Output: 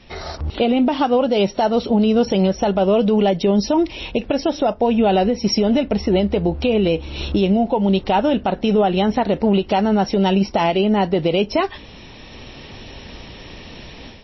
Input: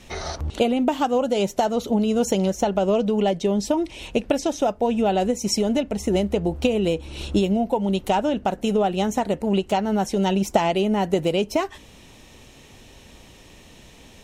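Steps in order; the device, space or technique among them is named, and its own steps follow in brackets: low-bitrate web radio (AGC gain up to 11 dB; limiter -8 dBFS, peak gain reduction 6.5 dB; MP3 24 kbps 16000 Hz)

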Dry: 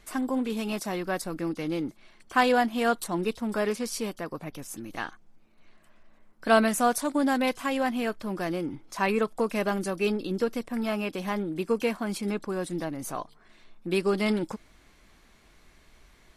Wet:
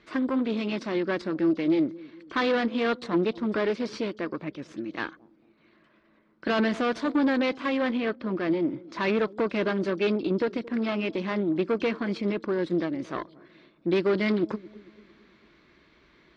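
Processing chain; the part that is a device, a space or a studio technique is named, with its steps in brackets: 7.97–8.65 air absorption 110 m; analogue delay pedal into a guitar amplifier (analogue delay 0.224 s, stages 1024, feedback 48%, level -21 dB; tube stage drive 27 dB, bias 0.8; speaker cabinet 91–4200 Hz, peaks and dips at 93 Hz -10 dB, 330 Hz +7 dB, 760 Hz -9 dB, 2900 Hz -3 dB); gain +7 dB

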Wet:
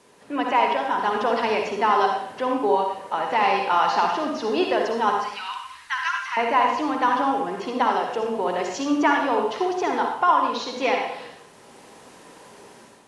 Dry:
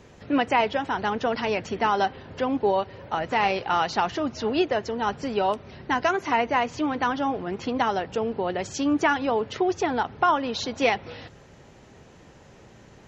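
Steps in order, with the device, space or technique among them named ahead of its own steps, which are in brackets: 5.19–6.37 inverse Chebyshev band-stop 220–490 Hz, stop band 70 dB; filmed off a television (BPF 250–6600 Hz; bell 1000 Hz +6.5 dB 0.39 oct; reverb RT60 0.70 s, pre-delay 49 ms, DRR 1.5 dB; white noise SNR 32 dB; AGC gain up to 8 dB; gain -5.5 dB; AAC 96 kbps 24000 Hz)

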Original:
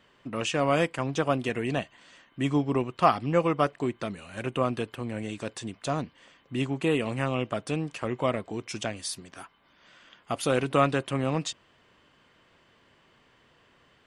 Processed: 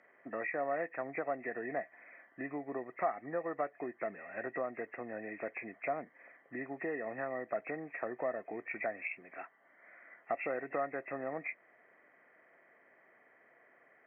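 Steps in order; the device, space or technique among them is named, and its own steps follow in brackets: hearing aid with frequency lowering (nonlinear frequency compression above 1700 Hz 4:1; compressor 4:1, threshold -31 dBFS, peak gain reduction 14 dB; speaker cabinet 360–6700 Hz, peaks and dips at 680 Hz +8 dB, 990 Hz -7 dB, 2800 Hz -8 dB); gain -2.5 dB

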